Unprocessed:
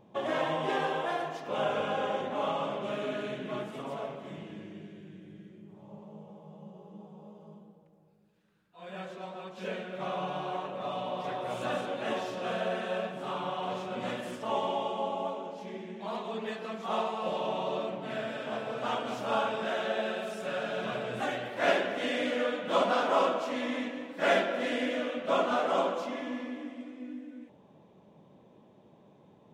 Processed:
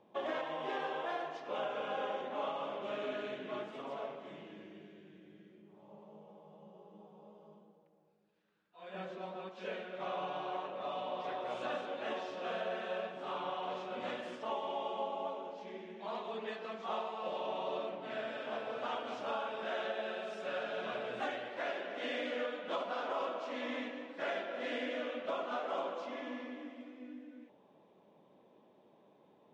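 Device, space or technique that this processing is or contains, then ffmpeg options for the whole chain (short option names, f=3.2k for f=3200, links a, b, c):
DJ mixer with the lows and highs turned down: -filter_complex "[0:a]asettb=1/sr,asplit=3[a][b][c];[a]atrim=end=8.944[d];[b]atrim=start=8.94:end=9.49,asetpts=PTS-STARTPTS,afade=t=in:d=0.004:c=qsin,afade=t=out:st=0.546:d=0.004:c=qsin,lowshelf=f=290:g=11.5[e];[c]atrim=start=9.486[f];[d][e]acrossfade=d=0.004:c1=hsin:c2=qsin[g];[g][f]acrossfade=d=0.004:c1=qsin:c2=hsin,acrossover=split=240 6200:gain=0.2 1 0.0708[h][i][j];[h][i][j]amix=inputs=3:normalize=0,alimiter=limit=-23.5dB:level=0:latency=1:release=470,volume=-4dB"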